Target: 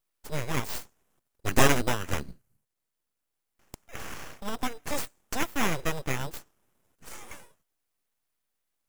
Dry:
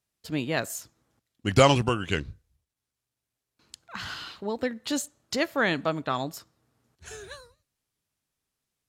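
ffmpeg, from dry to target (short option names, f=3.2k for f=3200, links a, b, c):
-filter_complex "[0:a]highshelf=f=6.9k:g=8.5,acrossover=split=6200[a][b];[a]acrusher=samples=10:mix=1:aa=0.000001[c];[c][b]amix=inputs=2:normalize=0,aeval=exprs='abs(val(0))':c=same"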